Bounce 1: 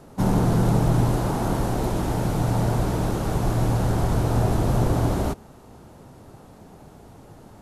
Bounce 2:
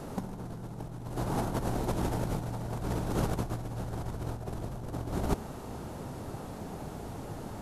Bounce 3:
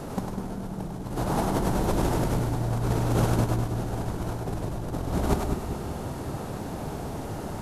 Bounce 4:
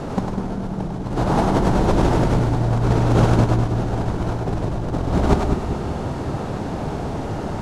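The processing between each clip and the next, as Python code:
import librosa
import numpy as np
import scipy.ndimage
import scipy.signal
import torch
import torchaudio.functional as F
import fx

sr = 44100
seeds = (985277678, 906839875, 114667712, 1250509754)

y1 = fx.over_compress(x, sr, threshold_db=-28.0, ratio=-0.5)
y1 = y1 * 10.0 ** (-3.0 / 20.0)
y2 = fx.echo_split(y1, sr, split_hz=440.0, low_ms=197, high_ms=100, feedback_pct=52, wet_db=-4)
y2 = y2 * 10.0 ** (5.0 / 20.0)
y3 = fx.air_absorb(y2, sr, metres=83.0)
y3 = y3 * 10.0 ** (8.0 / 20.0)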